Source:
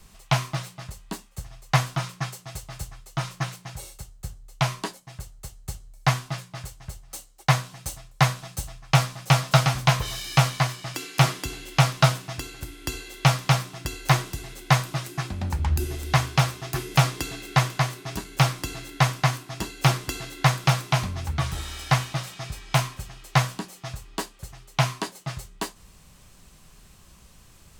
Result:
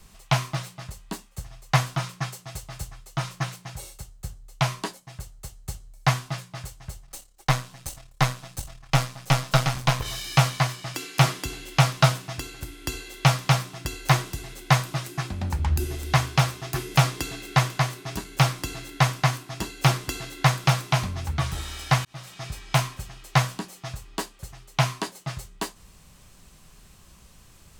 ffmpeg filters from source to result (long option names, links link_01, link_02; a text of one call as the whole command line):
ffmpeg -i in.wav -filter_complex "[0:a]asettb=1/sr,asplit=3[link_01][link_02][link_03];[link_01]atrim=end=7.054[link_04];[link_02]atrim=start=7.05:end=10.06,asetpts=PTS-STARTPTS,afade=type=in:duration=0.004:curve=qsin,afade=type=out:start_time=3.006:duration=0.004:curve=qsin,aeval=exprs='if(lt(val(0),0),0.447*val(0),val(0))':channel_layout=same[link_05];[link_03]atrim=start=10.056[link_06];[link_04][link_05]acrossfade=duration=0.004:curve1=hsin:curve2=qsin[link_07];[link_07][link_06]acrossfade=duration=0.004:curve1=qsin:curve2=hsin,asplit=2[link_08][link_09];[link_08]atrim=end=22.05,asetpts=PTS-STARTPTS,afade=type=out:start_time=22.046:duration=0.004:curve=hsin[link_10];[link_09]atrim=start=22.05,asetpts=PTS-STARTPTS,afade=type=in:duration=0.42[link_11];[link_10][link_11]concat=n=2:v=0:a=1" out.wav